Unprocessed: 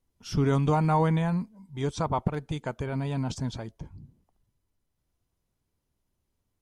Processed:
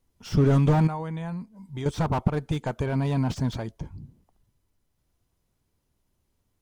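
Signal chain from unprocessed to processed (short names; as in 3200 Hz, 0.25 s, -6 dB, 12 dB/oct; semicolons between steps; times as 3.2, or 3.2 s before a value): 0.87–1.86 compressor 6:1, threshold -36 dBFS, peak gain reduction 15 dB; slew limiter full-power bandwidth 29 Hz; gain +5 dB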